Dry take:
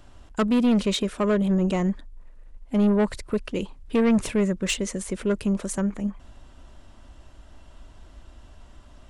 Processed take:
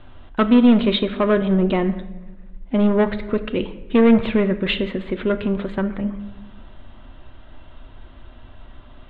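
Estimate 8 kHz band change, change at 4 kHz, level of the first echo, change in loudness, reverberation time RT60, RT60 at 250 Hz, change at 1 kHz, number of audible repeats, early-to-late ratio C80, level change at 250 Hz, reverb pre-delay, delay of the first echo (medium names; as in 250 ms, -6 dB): under -35 dB, +5.0 dB, no echo, +5.0 dB, 1.1 s, 1.5 s, +6.5 dB, no echo, 15.0 dB, +5.0 dB, 8 ms, no echo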